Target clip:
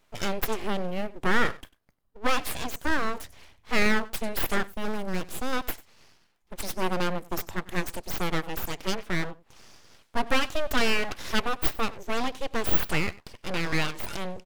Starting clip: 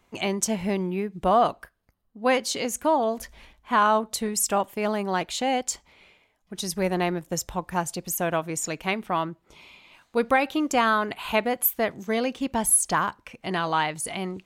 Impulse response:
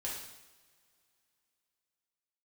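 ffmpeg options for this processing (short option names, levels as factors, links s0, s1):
-filter_complex "[0:a]asplit=3[s0][s1][s2];[s0]afade=t=out:st=2.49:d=0.02[s3];[s1]tremolo=f=69:d=0.4,afade=t=in:st=2.49:d=0.02,afade=t=out:st=2.91:d=0.02[s4];[s2]afade=t=in:st=2.91:d=0.02[s5];[s3][s4][s5]amix=inputs=3:normalize=0,asettb=1/sr,asplit=3[s6][s7][s8];[s6]atrim=end=10.414[s9];[s7]atrim=start=10.41:end=11.16,asetpts=PTS-STARTPTS,afade=t=in:d=0.004:c=qsin,afade=t=out:st=0.746:d=0.004:c=qsin,aecho=1:1:2.6:0.48,atrim=end_sample=33075[s10];[s8]atrim=start=11.156[s11];[s9][s10]acrossfade=d=0.004:c1=hsin:c2=qsin[s12];[s12][s11]acrossfade=d=0.004:c1=qsin:c2=hsin,aecho=1:1:96:0.1,aeval=exprs='abs(val(0))':c=same,asettb=1/sr,asplit=3[s13][s14][s15];[s13]atrim=end=4.674[s16];[s14]atrim=start=4.67:end=5.53,asetpts=PTS-STARTPTS,afade=t=in:d=0.004:c=qsin,afade=t=out:st=0.856:d=0.004:c=qsin,equalizer=f=2200:w=0.33:g=-6.5[s17];[s15]atrim=start=5.526[s18];[s16][s17]acrossfade=d=0.004:c1=hsin:c2=qsin[s19];[s19][s18]acrossfade=d=0.004:c1=qsin:c2=hsin"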